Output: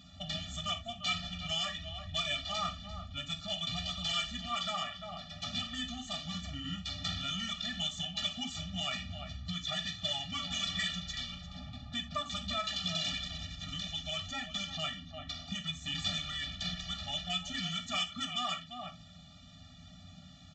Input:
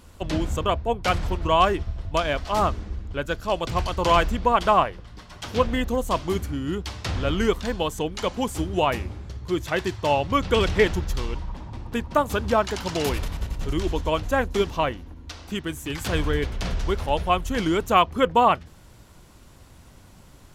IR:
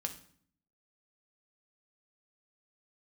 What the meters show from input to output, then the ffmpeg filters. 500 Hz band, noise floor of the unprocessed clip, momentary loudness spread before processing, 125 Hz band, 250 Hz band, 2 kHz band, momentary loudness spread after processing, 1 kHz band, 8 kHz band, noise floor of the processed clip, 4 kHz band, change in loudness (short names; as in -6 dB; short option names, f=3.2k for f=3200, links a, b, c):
-24.5 dB, -49 dBFS, 11 LU, -14.0 dB, -15.5 dB, -10.5 dB, 11 LU, -18.5 dB, -5.0 dB, -54 dBFS, +0.5 dB, -11.5 dB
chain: -filter_complex "[0:a]aecho=1:1:345:0.15,acrossover=split=1400[a][b];[a]acompressor=threshold=-34dB:ratio=6[c];[c][b]amix=inputs=2:normalize=0,equalizer=f=3.5k:t=o:w=0.63:g=14.5,aresample=16000,asoftclip=type=tanh:threshold=-21.5dB,aresample=44100,highpass=71[d];[1:a]atrim=start_sample=2205,atrim=end_sample=3969[e];[d][e]afir=irnorm=-1:irlink=0,afftfilt=real='re*eq(mod(floor(b*sr/1024/280),2),0)':imag='im*eq(mod(floor(b*sr/1024/280),2),0)':win_size=1024:overlap=0.75,volume=-3dB"